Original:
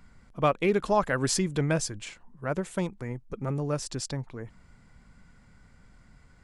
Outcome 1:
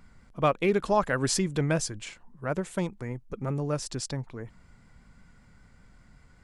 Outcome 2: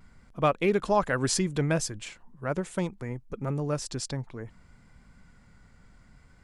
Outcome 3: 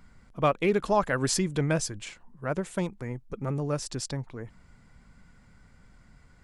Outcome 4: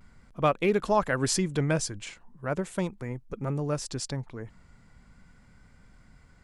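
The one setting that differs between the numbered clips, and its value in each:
vibrato, rate: 5.2 Hz, 0.66 Hz, 12 Hz, 0.39 Hz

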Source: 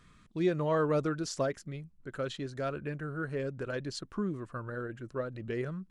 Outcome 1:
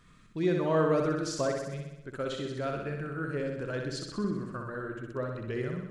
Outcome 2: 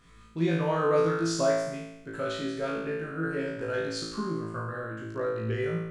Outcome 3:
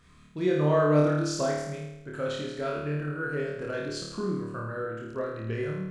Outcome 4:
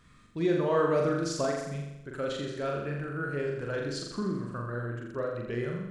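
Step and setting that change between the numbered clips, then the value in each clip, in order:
flutter echo, walls apart: 10.8 m, 3.1 m, 4.6 m, 7.2 m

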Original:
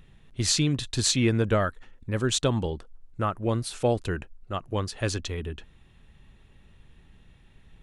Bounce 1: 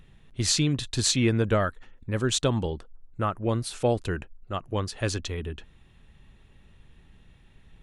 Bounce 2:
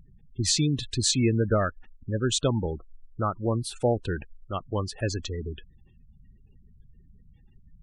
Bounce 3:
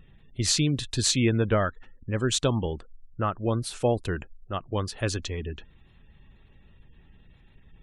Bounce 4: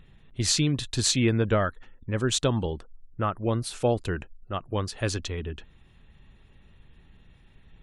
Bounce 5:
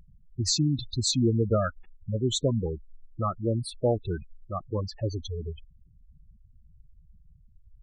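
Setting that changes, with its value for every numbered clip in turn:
spectral gate, under each frame's peak: -60 dB, -20 dB, -35 dB, -45 dB, -10 dB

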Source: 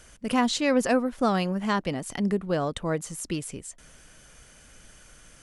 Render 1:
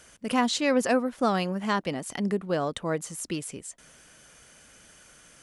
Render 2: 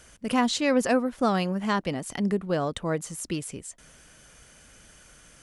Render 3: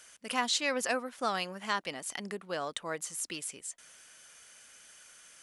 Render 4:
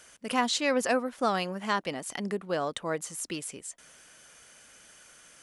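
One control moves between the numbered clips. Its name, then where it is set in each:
high-pass, cutoff frequency: 170 Hz, 43 Hz, 1.5 kHz, 530 Hz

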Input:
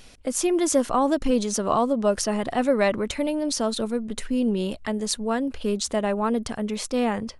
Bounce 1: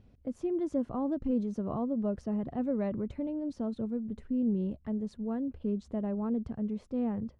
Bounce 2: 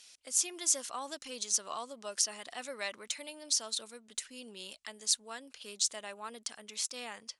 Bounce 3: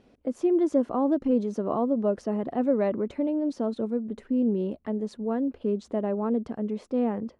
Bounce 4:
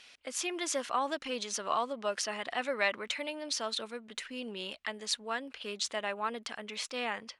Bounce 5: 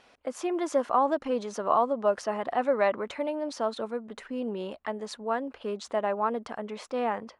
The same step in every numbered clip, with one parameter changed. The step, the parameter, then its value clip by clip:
band-pass filter, frequency: 110 Hz, 6.7 kHz, 310 Hz, 2.6 kHz, 950 Hz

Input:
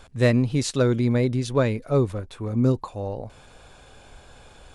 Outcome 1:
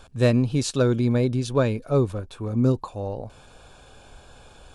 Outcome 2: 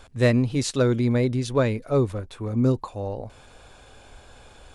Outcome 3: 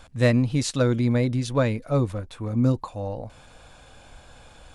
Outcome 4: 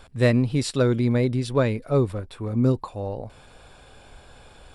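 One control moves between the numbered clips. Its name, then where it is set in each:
band-stop, frequency: 2 kHz, 160 Hz, 400 Hz, 6.4 kHz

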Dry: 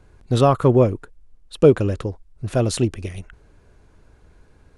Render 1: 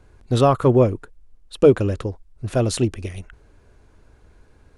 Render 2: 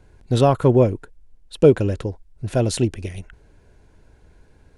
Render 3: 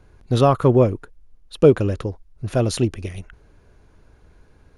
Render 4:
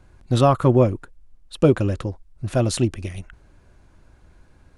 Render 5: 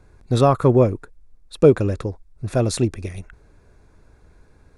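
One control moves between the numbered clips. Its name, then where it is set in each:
band-stop, frequency: 160 Hz, 1.2 kHz, 7.9 kHz, 440 Hz, 3 kHz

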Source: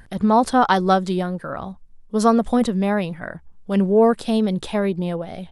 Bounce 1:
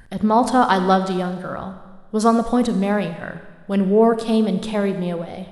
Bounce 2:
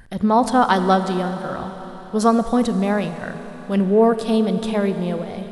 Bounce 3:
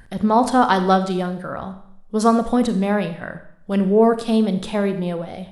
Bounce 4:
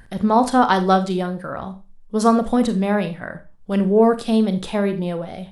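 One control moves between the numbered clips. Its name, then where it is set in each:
Schroeder reverb, RT60: 1.4 s, 4.6 s, 0.68 s, 0.31 s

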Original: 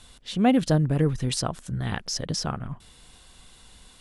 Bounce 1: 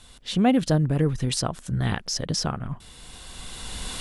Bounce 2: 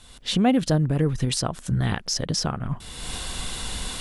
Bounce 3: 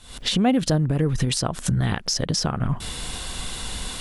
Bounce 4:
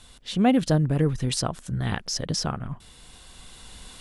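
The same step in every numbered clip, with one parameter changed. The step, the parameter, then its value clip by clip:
recorder AGC, rising by: 13 dB/s, 32 dB/s, 91 dB/s, 5.2 dB/s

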